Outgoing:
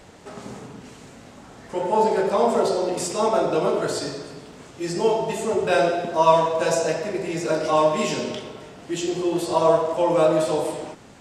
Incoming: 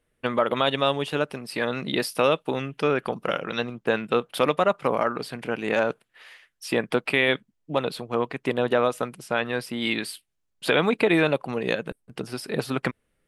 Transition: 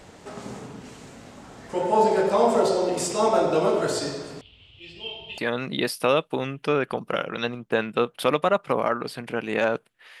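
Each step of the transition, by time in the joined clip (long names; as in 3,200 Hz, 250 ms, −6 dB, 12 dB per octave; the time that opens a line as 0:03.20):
outgoing
0:04.41–0:05.38: drawn EQ curve 100 Hz 0 dB, 170 Hz −22 dB, 1,700 Hz −23 dB, 3,000 Hz +8 dB, 6,200 Hz −30 dB
0:05.38: continue with incoming from 0:01.53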